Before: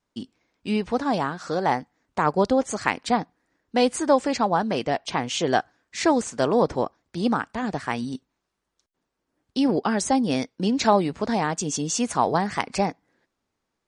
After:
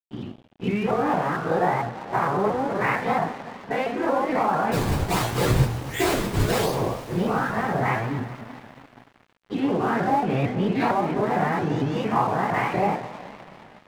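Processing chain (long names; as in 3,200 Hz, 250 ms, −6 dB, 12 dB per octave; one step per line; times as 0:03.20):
every bin's largest magnitude spread in time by 120 ms
low-pass filter 2,400 Hz 24 dB per octave
downward compressor 8 to 1, threshold −20 dBFS, peak gain reduction 10.5 dB
high-pass filter 77 Hz 12 dB per octave
0:04.71–0:06.74: sample-and-hold swept by an LFO 39×, swing 160% 1.4 Hz
parametric band 120 Hz +11.5 dB 0.25 octaves
hum removal 123.9 Hz, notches 4
convolution reverb, pre-delay 3 ms, DRR −9 dB
dead-zone distortion −34 dBFS
pitch modulation by a square or saw wave saw up 4.4 Hz, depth 160 cents
level −7 dB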